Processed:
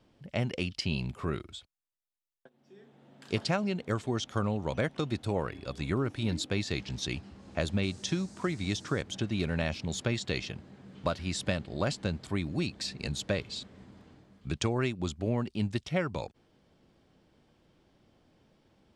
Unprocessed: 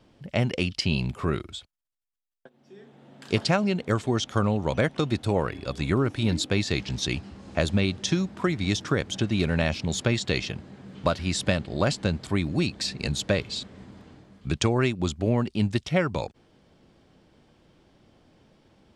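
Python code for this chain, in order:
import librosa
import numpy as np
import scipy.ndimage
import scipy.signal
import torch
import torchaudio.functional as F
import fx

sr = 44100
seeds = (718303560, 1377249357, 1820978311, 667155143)

y = fx.dmg_noise_band(x, sr, seeds[0], low_hz=4100.0, high_hz=8800.0, level_db=-52.0, at=(7.82, 9.01), fade=0.02)
y = F.gain(torch.from_numpy(y), -6.5).numpy()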